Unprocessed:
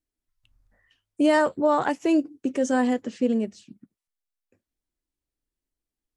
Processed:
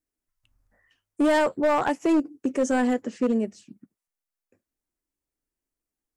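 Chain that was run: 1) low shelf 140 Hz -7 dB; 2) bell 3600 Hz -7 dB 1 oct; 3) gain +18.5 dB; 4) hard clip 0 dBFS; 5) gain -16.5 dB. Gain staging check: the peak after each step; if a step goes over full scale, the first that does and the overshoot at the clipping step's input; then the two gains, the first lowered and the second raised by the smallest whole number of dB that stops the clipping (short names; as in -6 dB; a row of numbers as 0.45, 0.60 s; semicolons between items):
-10.0, -10.5, +8.0, 0.0, -16.5 dBFS; step 3, 8.0 dB; step 3 +10.5 dB, step 5 -8.5 dB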